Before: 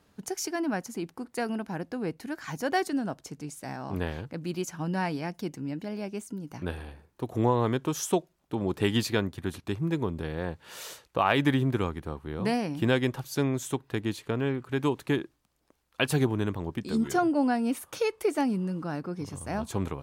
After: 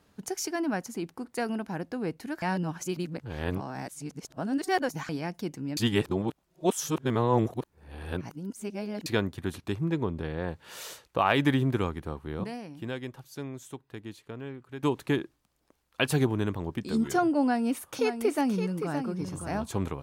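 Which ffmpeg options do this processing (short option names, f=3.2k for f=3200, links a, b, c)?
-filter_complex "[0:a]asettb=1/sr,asplit=3[a][b][c];[a]atrim=end=9.844[d];[b]atrim=start=9.84:end=10.48,asetpts=PTS-STARTPTS,afade=t=in:d=0.004:c=qsin,afade=t=out:st=0.636:d=0.004:c=qsin,highshelf=f=7.3k:g=-11.5[e];[c]atrim=start=10.476[f];[d][e]acrossfade=d=0.004:c1=hsin:c2=qsin[g];[g][f]acrossfade=d=0.004:c1=qsin:c2=hsin,asettb=1/sr,asplit=3[h][i][j];[h]atrim=end=17.424[k];[i]atrim=start=17.42:end=19.63,asetpts=PTS-STARTPTS,afade=t=in:d=0.004:c=qsin,afade=t=out:st=2.206:d=0.004:c=qsin,aecho=1:1:568:0.398,atrim=end_sample=97461[l];[j]atrim=start=19.626[m];[k][l]acrossfade=d=0.004:c1=hsin:c2=qsin[n];[n][m]acrossfade=d=0.004:c1=qsin:c2=hsin,asplit=7[o][p][q][r][s][t][u];[o]atrim=end=2.422[v];[p]atrim=start=2.418:end=5.092,asetpts=PTS-STARTPTS,areverse[w];[q]atrim=start=5.088:end=5.772[x];[r]atrim=start=5.768:end=9.062,asetpts=PTS-STARTPTS,areverse[y];[s]atrim=start=9.058:end=12.442[z];[t]atrim=start=12.438:end=14.832,asetpts=PTS-STARTPTS,volume=-11dB[aa];[u]atrim=start=14.828[ab];[v][w]acrossfade=d=0.004:c1=hsin:c2=hsin[ac];[ac][x]acrossfade=d=0.004:c1=hsin:c2=hsin[ad];[ad][y]acrossfade=d=0.004:c1=hsin:c2=hsin[ae];[ae][z]acrossfade=d=0.004:c1=hsin:c2=hsin[af];[af][aa]acrossfade=d=0.004:c1=hsin:c2=hsin[ag];[ag][ab]acrossfade=d=0.004:c1=hsin:c2=hsin"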